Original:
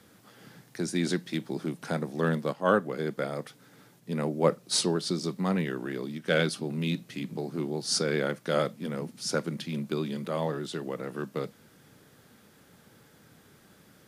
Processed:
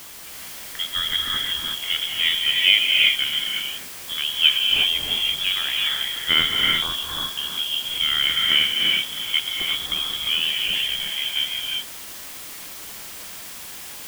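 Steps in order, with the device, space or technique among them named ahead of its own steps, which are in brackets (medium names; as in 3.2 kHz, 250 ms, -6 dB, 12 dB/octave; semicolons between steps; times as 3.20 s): scrambled radio voice (band-pass 320–3000 Hz; frequency inversion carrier 3.6 kHz; white noise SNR 13 dB); gated-style reverb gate 390 ms rising, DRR -1 dB; trim +7 dB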